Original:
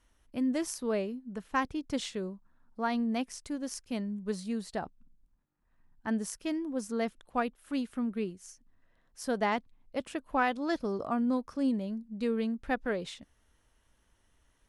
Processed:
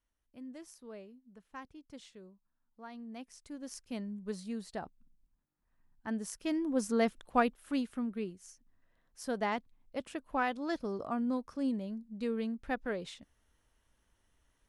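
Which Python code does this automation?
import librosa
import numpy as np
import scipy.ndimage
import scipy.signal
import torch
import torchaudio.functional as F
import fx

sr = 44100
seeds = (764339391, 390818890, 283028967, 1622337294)

y = fx.gain(x, sr, db=fx.line((2.93, -17.0), (3.83, -5.0), (6.2, -5.0), (6.72, 3.0), (7.46, 3.0), (8.1, -4.0)))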